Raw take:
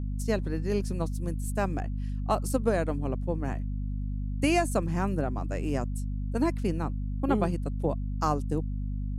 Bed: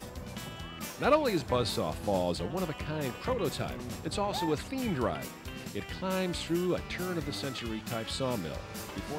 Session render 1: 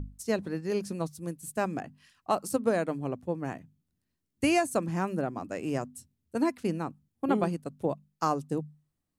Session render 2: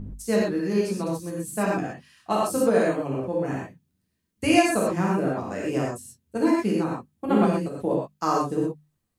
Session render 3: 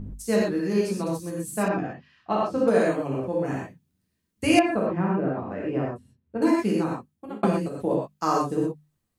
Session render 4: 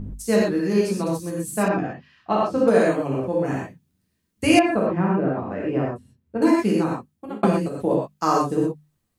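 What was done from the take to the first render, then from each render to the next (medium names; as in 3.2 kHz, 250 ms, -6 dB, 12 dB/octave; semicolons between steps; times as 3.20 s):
hum notches 50/100/150/200/250 Hz
gated-style reverb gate 150 ms flat, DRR -5 dB
1.68–2.68 s: distance through air 230 m; 4.59–6.42 s: distance through air 490 m; 6.92–7.43 s: fade out
trim +3.5 dB; peak limiter -3 dBFS, peak gain reduction 2 dB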